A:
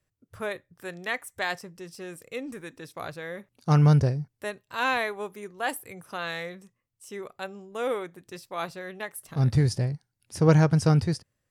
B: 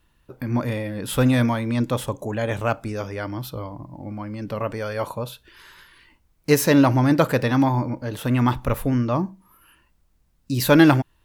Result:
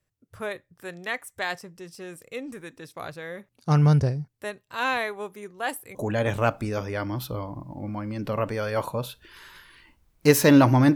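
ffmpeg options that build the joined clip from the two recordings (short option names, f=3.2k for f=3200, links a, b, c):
-filter_complex "[0:a]apad=whole_dur=10.95,atrim=end=10.95,atrim=end=5.952[a];[1:a]atrim=start=2.178:end=7.18[b];[a][b]acrossfade=d=0.004:c1=hsin:c2=hsin"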